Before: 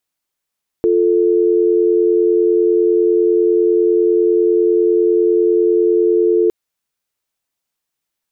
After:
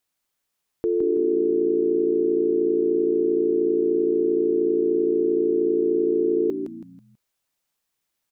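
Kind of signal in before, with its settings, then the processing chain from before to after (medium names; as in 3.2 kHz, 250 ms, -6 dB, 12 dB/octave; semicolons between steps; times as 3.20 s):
call progress tone dial tone, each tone -13 dBFS 5.66 s
peak limiter -16 dBFS; frequency-shifting echo 163 ms, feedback 36%, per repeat -57 Hz, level -7 dB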